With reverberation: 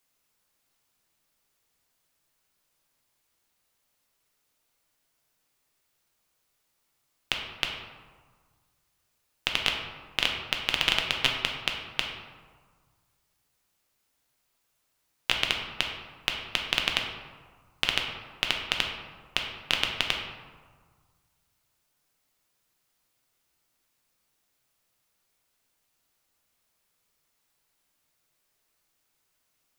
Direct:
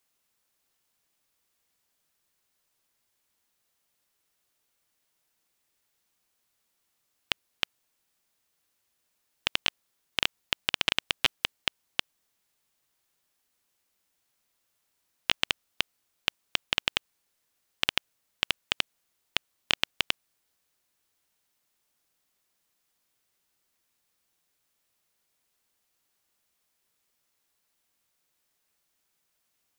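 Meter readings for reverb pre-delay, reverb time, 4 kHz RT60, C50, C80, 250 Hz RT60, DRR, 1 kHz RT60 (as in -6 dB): 4 ms, 1.6 s, 0.80 s, 4.0 dB, 6.0 dB, 1.8 s, 1.0 dB, 1.7 s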